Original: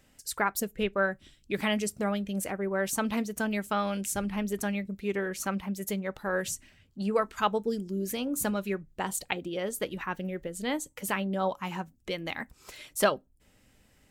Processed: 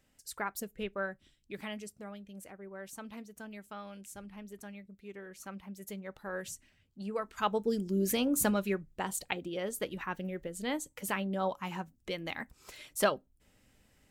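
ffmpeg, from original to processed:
ffmpeg -i in.wav -af "volume=10.5dB,afade=type=out:start_time=0.97:duration=1.08:silence=0.421697,afade=type=in:start_time=5.19:duration=1.04:silence=0.446684,afade=type=in:start_time=7.23:duration=0.88:silence=0.251189,afade=type=out:start_time=8.11:duration=0.94:silence=0.473151" out.wav

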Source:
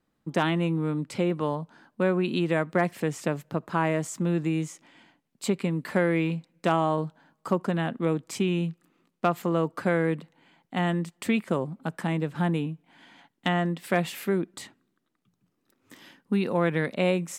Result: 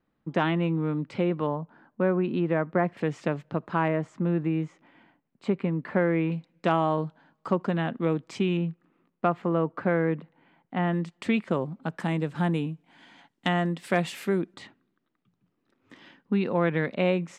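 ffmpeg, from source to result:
ffmpeg -i in.wav -af "asetnsamples=nb_out_samples=441:pad=0,asendcmd='1.47 lowpass f 1700;2.97 lowpass f 3600;3.88 lowpass f 2000;6.32 lowpass f 4200;8.57 lowpass f 2100;10.93 lowpass f 4700;12 lowpass f 9100;14.54 lowpass f 3500',lowpass=3100" out.wav

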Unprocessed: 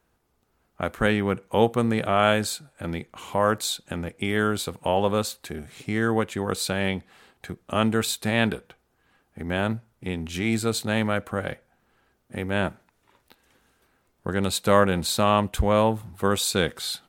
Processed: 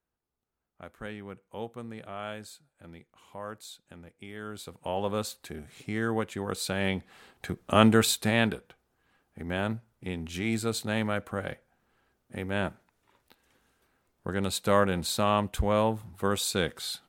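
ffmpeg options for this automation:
ffmpeg -i in.wav -af "volume=3dB,afade=type=in:start_time=4.4:duration=0.86:silence=0.251189,afade=type=in:start_time=6.58:duration=1.27:silence=0.354813,afade=type=out:start_time=7.85:duration=0.7:silence=0.398107" out.wav

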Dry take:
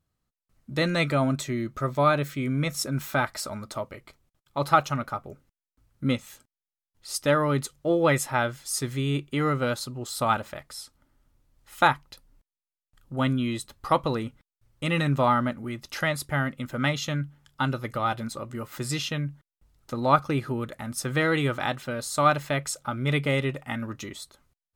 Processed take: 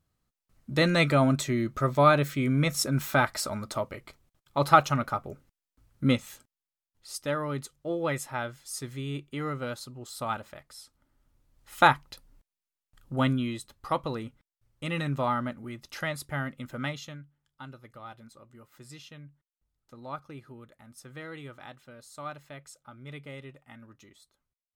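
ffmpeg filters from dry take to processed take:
ffmpeg -i in.wav -af "volume=10.5dB,afade=type=out:start_time=6.13:duration=1.09:silence=0.334965,afade=type=in:start_time=10.8:duration=1.08:silence=0.354813,afade=type=out:start_time=13.13:duration=0.45:silence=0.446684,afade=type=out:start_time=16.75:duration=0.47:silence=0.251189" out.wav

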